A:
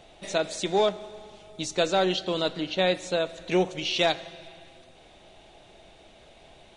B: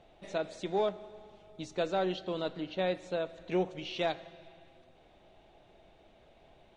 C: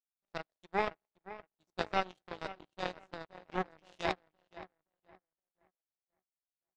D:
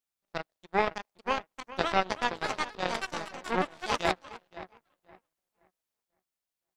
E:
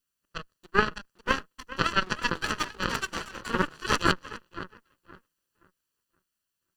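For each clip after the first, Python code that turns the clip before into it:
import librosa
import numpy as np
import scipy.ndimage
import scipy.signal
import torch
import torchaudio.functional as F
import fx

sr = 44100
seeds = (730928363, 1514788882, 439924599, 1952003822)

y1 = fx.lowpass(x, sr, hz=1700.0, slope=6)
y1 = y1 * librosa.db_to_amplitude(-6.5)
y2 = fx.band_shelf(y1, sr, hz=1000.0, db=8.5, octaves=1.1)
y2 = fx.echo_filtered(y2, sr, ms=520, feedback_pct=65, hz=1800.0, wet_db=-4.5)
y2 = fx.power_curve(y2, sr, exponent=3.0)
y2 = y2 * librosa.db_to_amplitude(2.5)
y3 = fx.echo_pitch(y2, sr, ms=683, semitones=4, count=3, db_per_echo=-3.0)
y3 = y3 * librosa.db_to_amplitude(5.5)
y4 = fx.lower_of_two(y3, sr, delay_ms=0.67)
y4 = y4 * librosa.db_to_amplitude(7.0)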